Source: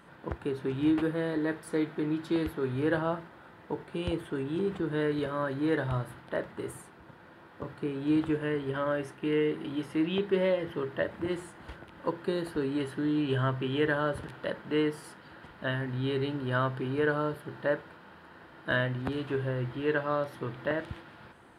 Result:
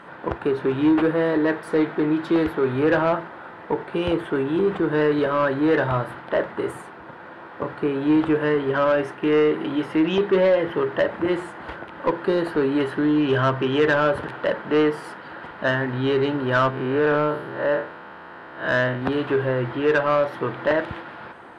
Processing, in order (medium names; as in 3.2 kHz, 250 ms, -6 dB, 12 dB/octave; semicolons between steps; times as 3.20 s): 16.70–19.02 s: spectral blur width 135 ms; treble shelf 2.2 kHz -8.5 dB; overdrive pedal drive 17 dB, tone 2.7 kHz, clips at -15.5 dBFS; trim +6.5 dB